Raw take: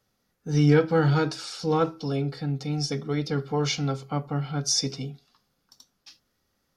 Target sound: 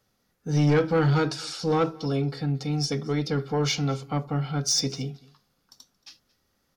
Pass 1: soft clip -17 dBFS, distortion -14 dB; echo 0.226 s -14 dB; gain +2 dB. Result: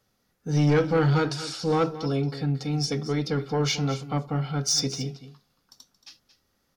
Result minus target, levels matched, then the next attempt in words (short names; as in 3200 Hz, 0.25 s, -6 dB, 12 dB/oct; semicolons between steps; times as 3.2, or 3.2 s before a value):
echo-to-direct +10 dB
soft clip -17 dBFS, distortion -14 dB; echo 0.226 s -24 dB; gain +2 dB